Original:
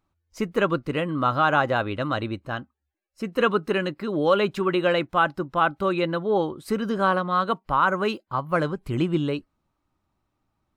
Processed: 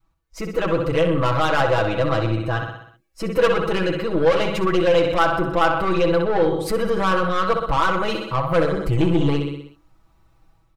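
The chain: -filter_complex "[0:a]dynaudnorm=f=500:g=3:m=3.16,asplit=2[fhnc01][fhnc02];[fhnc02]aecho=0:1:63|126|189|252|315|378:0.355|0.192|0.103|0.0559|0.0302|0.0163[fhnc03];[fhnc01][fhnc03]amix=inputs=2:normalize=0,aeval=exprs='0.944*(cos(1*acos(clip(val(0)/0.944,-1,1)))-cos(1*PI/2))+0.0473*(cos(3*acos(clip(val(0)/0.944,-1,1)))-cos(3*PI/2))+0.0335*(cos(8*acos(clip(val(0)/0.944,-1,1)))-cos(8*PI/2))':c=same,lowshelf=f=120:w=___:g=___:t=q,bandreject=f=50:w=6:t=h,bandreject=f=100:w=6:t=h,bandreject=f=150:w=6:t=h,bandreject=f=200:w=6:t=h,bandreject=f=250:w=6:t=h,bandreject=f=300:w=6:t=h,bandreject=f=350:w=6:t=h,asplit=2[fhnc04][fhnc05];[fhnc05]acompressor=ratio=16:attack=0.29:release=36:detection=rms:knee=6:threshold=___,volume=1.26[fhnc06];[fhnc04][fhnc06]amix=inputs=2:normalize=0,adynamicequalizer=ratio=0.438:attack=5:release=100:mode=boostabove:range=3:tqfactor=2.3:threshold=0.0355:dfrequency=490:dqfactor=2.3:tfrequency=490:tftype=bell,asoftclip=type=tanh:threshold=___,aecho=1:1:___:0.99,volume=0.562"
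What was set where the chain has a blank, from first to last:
1.5, 9.5, 0.0562, 0.282, 6.1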